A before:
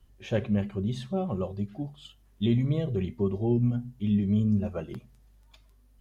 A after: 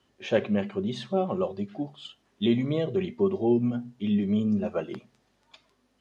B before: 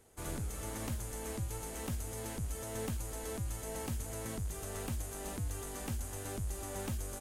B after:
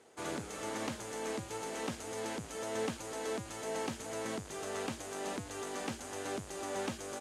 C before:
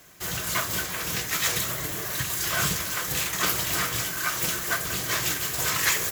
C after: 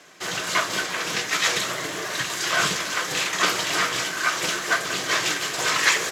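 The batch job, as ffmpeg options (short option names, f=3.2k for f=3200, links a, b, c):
-af "highpass=260,lowpass=5.8k,volume=6dB"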